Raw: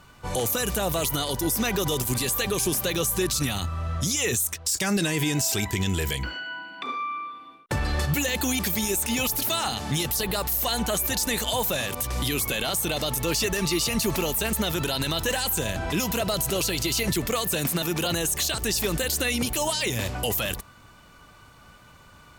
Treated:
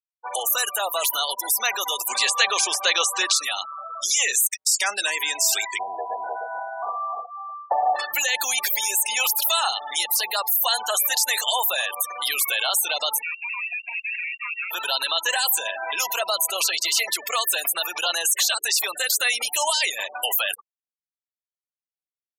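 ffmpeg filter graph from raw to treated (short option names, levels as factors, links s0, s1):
-filter_complex "[0:a]asettb=1/sr,asplit=3[s0][s1][s2];[s0]atrim=end=2.084[s3];[s1]atrim=start=2.08:end=3.36,asetpts=PTS-STARTPTS,afade=t=in:d=0.004:c=qsin,afade=t=out:st=1.276:d=0.004:c=qsin,lowpass=6600,acontrast=21[s4];[s2]atrim=start=3.356[s5];[s3][s4]acrossfade=d=0.004:c1=hsin:c2=qsin[s6];[s6][s5]acrossfade=d=0.004:c1=qsin:c2=hsin,asettb=1/sr,asplit=3[s7][s8][s9];[s7]atrim=end=5.794[s10];[s8]atrim=start=5.79:end=7.96,asetpts=PTS-STARTPTS,afade=t=in:d=0.004:c=qsin,afade=t=out:st=2.166:d=0.004:c=qsin,lowpass=f=730:t=q:w=8.8,aecho=1:1:305:0.668,atrim=end_sample=95697[s11];[s9]atrim=start=7.956[s12];[s10][s11]acrossfade=d=0.004:c1=hsin:c2=qsin[s13];[s13][s12]acrossfade=d=0.004:c1=qsin:c2=hsin,asettb=1/sr,asplit=3[s14][s15][s16];[s14]atrim=end=13.224[s17];[s15]atrim=start=13.22:end=14.71,asetpts=PTS-STARTPTS,afade=t=in:d=0.004:c=qsin,afade=t=out:st=1.486:d=0.004:c=qsin,volume=42.2,asoftclip=hard,volume=0.0237,lowpass=f=2400:t=q:w=0.5098,lowpass=f=2400:t=q:w=0.6013,lowpass=f=2400:t=q:w=0.9,lowpass=f=2400:t=q:w=2.563,afreqshift=-2800[s18];[s16]atrim=start=14.706[s19];[s17][s18]acrossfade=d=0.004:c1=hsin:c2=qsin[s20];[s20][s19]acrossfade=d=0.004:c1=qsin:c2=hsin,afftfilt=real='re*gte(hypot(re,im),0.0355)':imag='im*gte(hypot(re,im),0.0355)':win_size=1024:overlap=0.75,highpass=f=710:w=0.5412,highpass=f=710:w=1.3066,volume=2"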